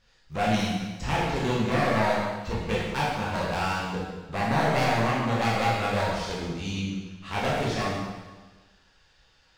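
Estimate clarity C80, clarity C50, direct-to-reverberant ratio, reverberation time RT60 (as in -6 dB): 2.0 dB, -0.5 dB, -6.5 dB, 1.3 s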